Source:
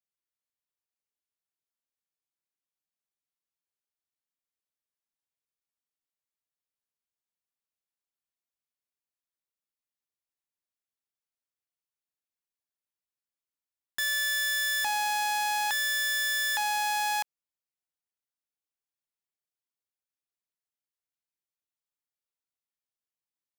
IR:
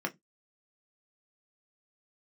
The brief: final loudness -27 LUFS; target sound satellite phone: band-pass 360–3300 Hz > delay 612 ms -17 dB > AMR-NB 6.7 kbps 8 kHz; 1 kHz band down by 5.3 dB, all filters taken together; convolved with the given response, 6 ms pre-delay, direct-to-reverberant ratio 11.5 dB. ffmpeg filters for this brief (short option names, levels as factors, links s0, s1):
-filter_complex "[0:a]equalizer=f=1000:t=o:g=-6.5,asplit=2[s0][s1];[1:a]atrim=start_sample=2205,adelay=6[s2];[s1][s2]afir=irnorm=-1:irlink=0,volume=0.15[s3];[s0][s3]amix=inputs=2:normalize=0,highpass=360,lowpass=3300,aecho=1:1:612:0.141,volume=2.24" -ar 8000 -c:a libopencore_amrnb -b:a 6700